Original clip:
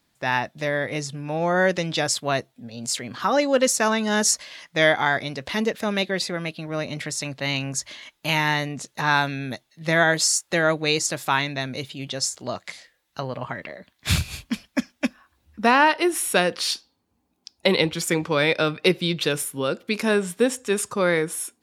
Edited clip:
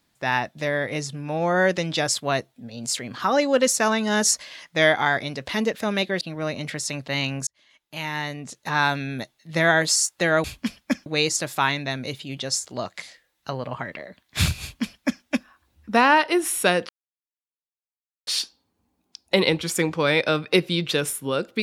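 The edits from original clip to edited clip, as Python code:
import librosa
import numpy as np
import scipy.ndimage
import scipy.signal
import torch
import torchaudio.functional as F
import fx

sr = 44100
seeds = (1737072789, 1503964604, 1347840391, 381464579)

y = fx.edit(x, sr, fx.cut(start_s=6.21, length_s=0.32),
    fx.fade_in_span(start_s=7.79, length_s=1.52),
    fx.duplicate(start_s=14.31, length_s=0.62, to_s=10.76),
    fx.insert_silence(at_s=16.59, length_s=1.38), tone=tone)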